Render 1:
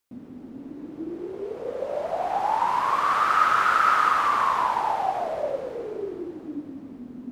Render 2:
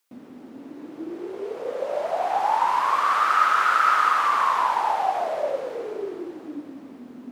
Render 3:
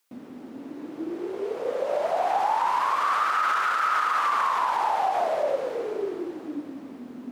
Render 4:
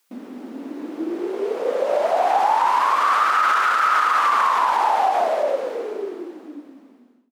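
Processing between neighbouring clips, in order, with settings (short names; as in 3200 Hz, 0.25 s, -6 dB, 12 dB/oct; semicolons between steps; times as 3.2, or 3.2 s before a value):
HPF 570 Hz 6 dB/oct; in parallel at +2 dB: vocal rider within 5 dB 2 s; on the sum: gain -4.5 dB
limiter -17.5 dBFS, peak gain reduction 11 dB; gain +1.5 dB
ending faded out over 2.29 s; brick-wall FIR high-pass 180 Hz; gain +6 dB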